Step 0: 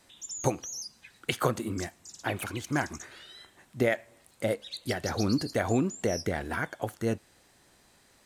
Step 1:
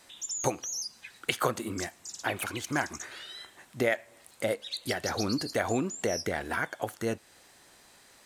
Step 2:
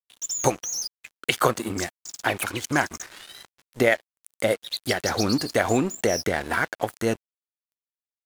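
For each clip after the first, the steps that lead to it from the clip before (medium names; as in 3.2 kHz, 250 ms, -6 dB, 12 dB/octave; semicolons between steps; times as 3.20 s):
bass shelf 310 Hz -9 dB; in parallel at -1 dB: compression, threshold -40 dBFS, peak gain reduction 16.5 dB
crossover distortion -44.5 dBFS; trim +8 dB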